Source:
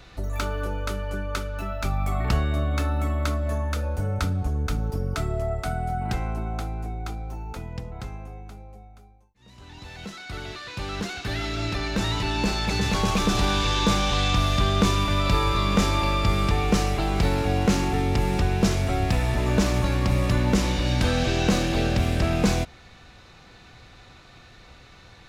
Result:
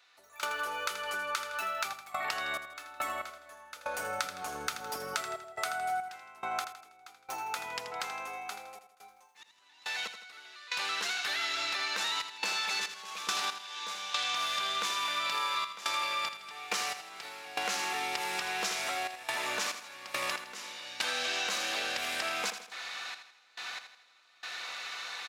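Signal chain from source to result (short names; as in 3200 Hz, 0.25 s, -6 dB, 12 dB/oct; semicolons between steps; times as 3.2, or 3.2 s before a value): step gate "..xxxxxxx.xx..x." 70 bpm -24 dB; in parallel at -1 dB: limiter -19 dBFS, peak gain reduction 9 dB; on the sum: HPF 1100 Hz 12 dB/oct; compressor 4:1, threshold -41 dBFS, peak gain reduction 16 dB; feedback echo 81 ms, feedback 45%, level -10 dB; gain +7.5 dB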